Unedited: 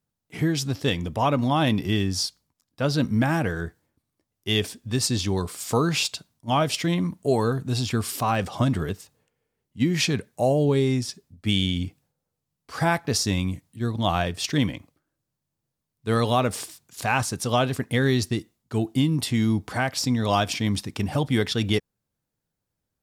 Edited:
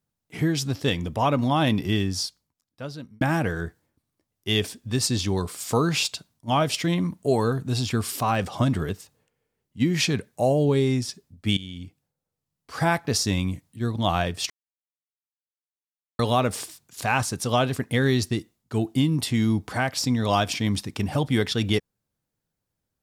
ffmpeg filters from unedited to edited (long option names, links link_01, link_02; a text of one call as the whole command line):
ffmpeg -i in.wav -filter_complex "[0:a]asplit=5[link_01][link_02][link_03][link_04][link_05];[link_01]atrim=end=3.21,asetpts=PTS-STARTPTS,afade=type=out:start_time=1.95:duration=1.26[link_06];[link_02]atrim=start=3.21:end=11.57,asetpts=PTS-STARTPTS,afade=type=in:duration=0.004:curve=hsin,afade=type=out:start_time=8.356:duration=0.004:curve=hsin:silence=0.149624[link_07];[link_03]atrim=start=11.57:end=14.5,asetpts=PTS-STARTPTS,afade=type=in:duration=1.27:silence=0.149624,afade=type=out:start_time=2.926:duration=0.004:curve=hsin[link_08];[link_04]atrim=start=14.5:end=16.19,asetpts=PTS-STARTPTS,volume=0[link_09];[link_05]atrim=start=16.19,asetpts=PTS-STARTPTS,afade=type=in:duration=0.004:curve=hsin[link_10];[link_06][link_07][link_08][link_09][link_10]concat=n=5:v=0:a=1" out.wav